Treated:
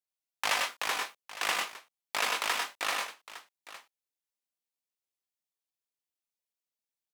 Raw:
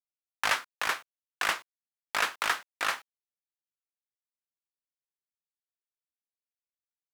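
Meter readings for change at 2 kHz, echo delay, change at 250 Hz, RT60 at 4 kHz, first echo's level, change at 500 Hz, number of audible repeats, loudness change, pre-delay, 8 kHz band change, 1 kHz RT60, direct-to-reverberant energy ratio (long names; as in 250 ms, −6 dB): −2.0 dB, 97 ms, 0.0 dB, no reverb audible, −3.5 dB, +1.0 dB, 2, −1.0 dB, no reverb audible, +2.5 dB, no reverb audible, no reverb audible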